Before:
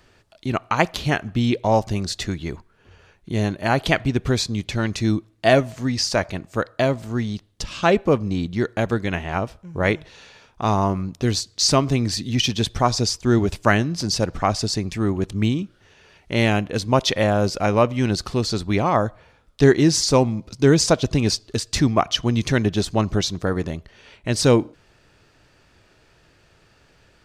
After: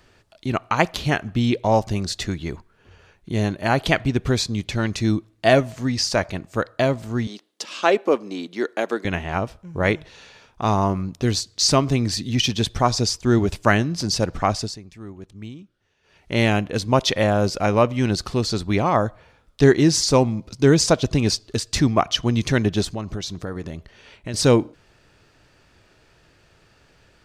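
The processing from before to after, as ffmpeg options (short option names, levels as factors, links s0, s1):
-filter_complex "[0:a]asettb=1/sr,asplit=3[s0][s1][s2];[s0]atrim=end=7.274[s3];[s1]atrim=start=7.27:end=9.05,asetpts=PTS-STARTPTS,afade=t=in:d=0.004:c=qsin,afade=t=out:st=1.776:d=0.004:c=qsin,highpass=f=280:w=0.5412,highpass=f=280:w=1.3066[s4];[s2]atrim=start=9.046[s5];[s3][s4]acrossfade=d=0.004:c1=hsin:c2=qsin[s6];[s6][s5]acrossfade=d=0.004:c1=qsin:c2=hsin,asettb=1/sr,asplit=3[s7][s8][s9];[s7]atrim=end=22.914[s10];[s8]atrim=start=22.91:end=24.34,asetpts=PTS-STARTPTS,afade=t=in:d=0.004:c=qsin,afade=t=out:st=1.426:d=0.004:c=qsin,acompressor=threshold=0.0398:ratio=2.5:attack=3.2:release=140:knee=1:detection=peak[s11];[s9]atrim=start=24.336[s12];[s10][s11]acrossfade=d=0.004:c1=hsin:c2=qsin[s13];[s13][s12]acrossfade=d=0.004:c1=qsin:c2=hsin,asplit=3[s14][s15][s16];[s14]atrim=end=14.78,asetpts=PTS-STARTPTS,afade=t=out:st=14.43:d=0.35:c=qsin:silence=0.158489[s17];[s15]atrim=start=14.78:end=16.02,asetpts=PTS-STARTPTS,volume=0.158[s18];[s16]atrim=start=16.02,asetpts=PTS-STARTPTS,afade=t=in:d=0.35:c=qsin:silence=0.158489[s19];[s17][s18][s19]concat=n=3:v=0:a=1"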